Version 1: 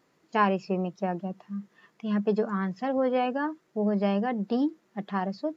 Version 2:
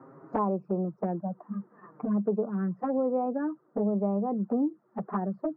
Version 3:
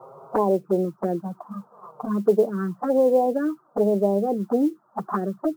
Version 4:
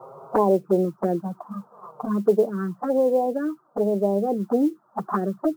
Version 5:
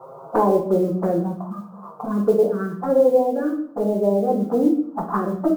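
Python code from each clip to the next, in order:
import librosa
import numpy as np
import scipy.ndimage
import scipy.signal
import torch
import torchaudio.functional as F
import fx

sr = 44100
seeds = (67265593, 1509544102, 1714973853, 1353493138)

y1 = scipy.signal.sosfilt(scipy.signal.ellip(3, 1.0, 40, [120.0, 1300.0], 'bandpass', fs=sr, output='sos'), x)
y1 = fx.env_flanger(y1, sr, rest_ms=7.6, full_db=-24.0)
y1 = fx.band_squash(y1, sr, depth_pct=70)
y2 = fx.band_shelf(y1, sr, hz=710.0, db=9.5, octaves=2.5)
y2 = fx.env_phaser(y2, sr, low_hz=270.0, high_hz=1300.0, full_db=-17.0)
y2 = fx.mod_noise(y2, sr, seeds[0], snr_db=33)
y2 = F.gain(torch.from_numpy(y2), 3.0).numpy()
y3 = fx.rider(y2, sr, range_db=10, speed_s=2.0)
y3 = F.gain(torch.from_numpy(y3), -1.5).numpy()
y4 = fx.room_shoebox(y3, sr, seeds[1], volume_m3=100.0, walls='mixed', distance_m=0.77)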